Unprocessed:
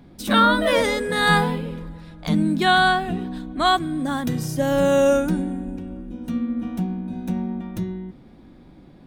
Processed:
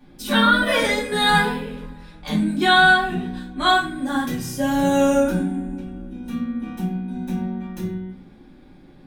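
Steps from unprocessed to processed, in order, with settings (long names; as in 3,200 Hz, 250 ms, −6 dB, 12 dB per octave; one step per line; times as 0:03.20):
low-shelf EQ 310 Hz −9 dB
convolution reverb RT60 0.40 s, pre-delay 3 ms, DRR −9 dB
level −7 dB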